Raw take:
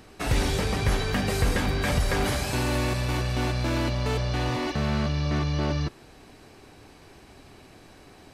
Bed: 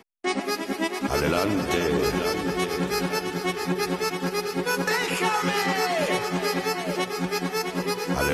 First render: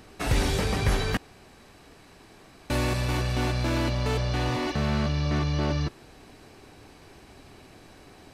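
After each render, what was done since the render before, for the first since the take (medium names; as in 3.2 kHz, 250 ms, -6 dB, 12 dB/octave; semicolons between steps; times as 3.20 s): 1.17–2.70 s: room tone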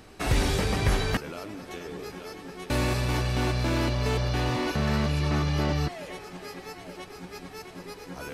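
add bed -15 dB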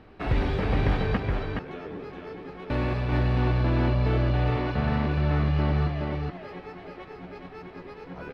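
distance through air 370 m; delay 421 ms -3.5 dB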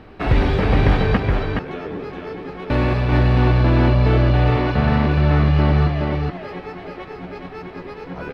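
trim +8.5 dB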